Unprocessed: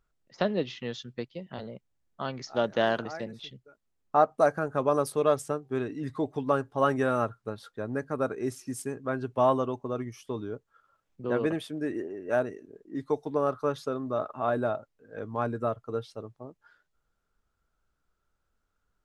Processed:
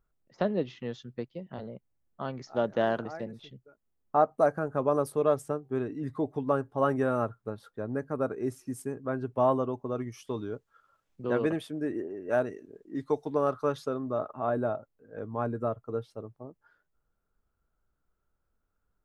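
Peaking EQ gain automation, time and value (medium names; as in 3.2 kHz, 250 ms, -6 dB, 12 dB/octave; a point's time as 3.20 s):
peaking EQ 4.5 kHz 2.8 oct
9.72 s -9.5 dB
10.22 s +1 dB
11.29 s +1 dB
12.03 s -9 dB
12.48 s -0.5 dB
13.71 s -0.5 dB
14.30 s -10.5 dB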